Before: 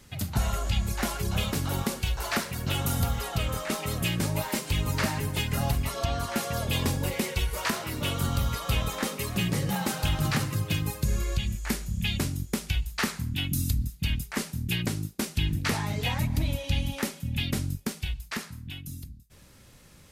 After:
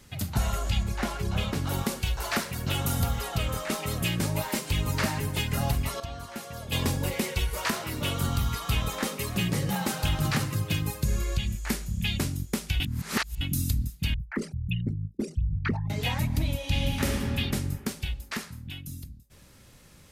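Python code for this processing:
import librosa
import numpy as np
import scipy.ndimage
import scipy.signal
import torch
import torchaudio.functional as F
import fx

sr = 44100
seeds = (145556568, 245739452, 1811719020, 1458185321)

y = fx.lowpass(x, sr, hz=3700.0, slope=6, at=(0.83, 1.67))
y = fx.peak_eq(y, sr, hz=550.0, db=-13.5, octaves=0.24, at=(8.35, 8.83))
y = fx.envelope_sharpen(y, sr, power=3.0, at=(14.14, 15.9))
y = fx.reverb_throw(y, sr, start_s=16.58, length_s=0.62, rt60_s=2.4, drr_db=-1.0)
y = fx.edit(y, sr, fx.clip_gain(start_s=6.0, length_s=0.72, db=-9.0),
    fx.reverse_span(start_s=12.8, length_s=0.61), tone=tone)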